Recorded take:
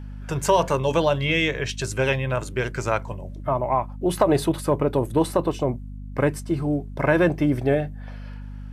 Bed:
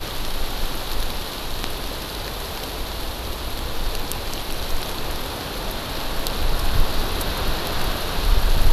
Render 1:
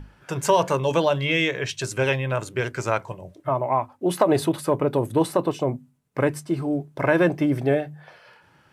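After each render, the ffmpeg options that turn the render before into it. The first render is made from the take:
-af "bandreject=f=50:t=h:w=6,bandreject=f=100:t=h:w=6,bandreject=f=150:t=h:w=6,bandreject=f=200:t=h:w=6,bandreject=f=250:t=h:w=6"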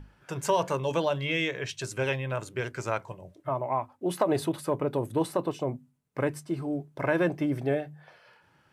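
-af "volume=-6.5dB"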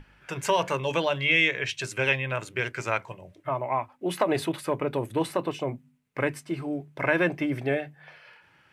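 -af "equalizer=f=2.3k:t=o:w=1.2:g=10,bandreject=f=50:t=h:w=6,bandreject=f=100:t=h:w=6,bandreject=f=150:t=h:w=6,bandreject=f=200:t=h:w=6,bandreject=f=250:t=h:w=6"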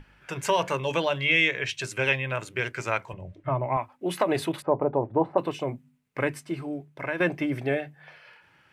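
-filter_complex "[0:a]asettb=1/sr,asplit=3[a][b][c];[a]atrim=end=3.134[d];[b]atrim=start=3.13:end=3.77,asetpts=PTS-STARTPTS,afade=t=in:d=0.004:c=qsin,afade=t=out:st=0.636:d=0.004:c=qsin,aemphasis=mode=reproduction:type=bsi[e];[c]atrim=start=3.766[f];[d][e]acrossfade=d=0.004:c1=hsin:c2=qsin[g];[g][f]acrossfade=d=0.004:c1=qsin:c2=hsin,asettb=1/sr,asplit=3[h][i][j];[h]atrim=end=4.624[k];[i]atrim=start=4.62:end=5.38,asetpts=PTS-STARTPTS,afade=t=in:d=0.004:c=qsin,afade=t=out:st=0.756:d=0.004:c=qsin,lowpass=f=800:t=q:w=2.7[l];[j]atrim=start=5.376[m];[k][l]acrossfade=d=0.004:c1=hsin:c2=qsin[n];[n][m]acrossfade=d=0.004:c1=qsin:c2=hsin,asplit=2[o][p];[o]atrim=end=7.2,asetpts=PTS-STARTPTS,afade=t=out:st=6.45:d=0.75:silence=0.375837[q];[p]atrim=start=7.2,asetpts=PTS-STARTPTS,afade=t=in:d=0.004:c=hsin:silence=0.375837[r];[q][r]concat=n=2:v=0:a=1"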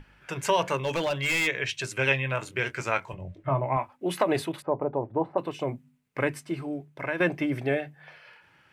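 -filter_complex "[0:a]asplit=3[a][b][c];[a]afade=t=out:st=0.83:d=0.02[d];[b]volume=22.5dB,asoftclip=hard,volume=-22.5dB,afade=t=in:st=0.83:d=0.02,afade=t=out:st=1.46:d=0.02[e];[c]afade=t=in:st=1.46:d=0.02[f];[d][e][f]amix=inputs=3:normalize=0,asettb=1/sr,asplit=3[g][h][i];[g]atrim=end=1.974[j];[h]atrim=start=1.97:end=3.92,asetpts=PTS-STARTPTS,afade=t=in:d=0.004:c=qsin,afade=t=out:st=1.946:d=0.004:c=qsin,asplit=2[k][l];[l]adelay=22,volume=-10dB[m];[k][m]amix=inputs=2:normalize=0,atrim=end_sample=85995[n];[i]atrim=start=3.916[o];[j][n]acrossfade=d=0.004:c1=hsin:c2=qsin[p];[p][o]acrossfade=d=0.004:c1=qsin:c2=hsin,asplit=3[q][r][s];[q]atrim=end=4.422[t];[r]atrim=start=4.418:end=5.592,asetpts=PTS-STARTPTS,volume=-3.5dB[u];[s]atrim=start=5.588[v];[t][u]acrossfade=d=0.004:c1=hsin:c2=hsin[w];[w][v]acrossfade=d=0.004:c1=hsin:c2=hsin"

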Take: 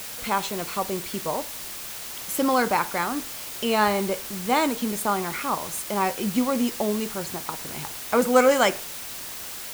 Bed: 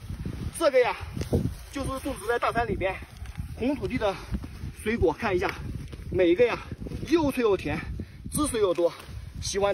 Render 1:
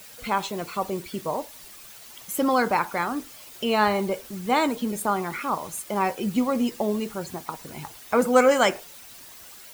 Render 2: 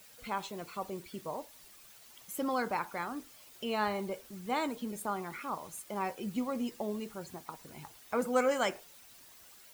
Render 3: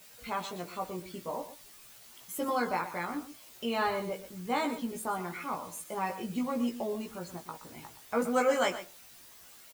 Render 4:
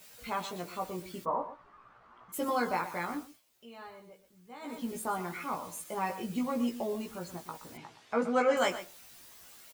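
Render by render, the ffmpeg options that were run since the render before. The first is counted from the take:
-af "afftdn=nr=11:nf=-36"
-af "volume=-11dB"
-filter_complex "[0:a]asplit=2[a][b];[b]adelay=17,volume=-2dB[c];[a][c]amix=inputs=2:normalize=0,aecho=1:1:122:0.237"
-filter_complex "[0:a]asplit=3[a][b][c];[a]afade=t=out:st=1.24:d=0.02[d];[b]lowpass=f=1.2k:t=q:w=4,afade=t=in:st=1.24:d=0.02,afade=t=out:st=2.32:d=0.02[e];[c]afade=t=in:st=2.32:d=0.02[f];[d][e][f]amix=inputs=3:normalize=0,asettb=1/sr,asplit=3[g][h][i];[g]atrim=end=7.774[j];[h]atrim=start=7.77:end=8.57,asetpts=PTS-STARTPTS,afade=t=in:d=0.004:c=qsin,afade=t=out:st=0.796:d=0.004:c=qsin,highpass=120,lowpass=4.6k[k];[i]atrim=start=8.566[l];[j][k]acrossfade=d=0.004:c1=hsin:c2=qsin[m];[m][l]acrossfade=d=0.004:c1=qsin:c2=hsin,asplit=3[n][o][p];[n]atrim=end=3.42,asetpts=PTS-STARTPTS,afade=t=out:st=3.13:d=0.29:silence=0.125893[q];[o]atrim=start=3.42:end=4.6,asetpts=PTS-STARTPTS,volume=-18dB[r];[p]atrim=start=4.6,asetpts=PTS-STARTPTS,afade=t=in:d=0.29:silence=0.125893[s];[q][r][s]concat=n=3:v=0:a=1"

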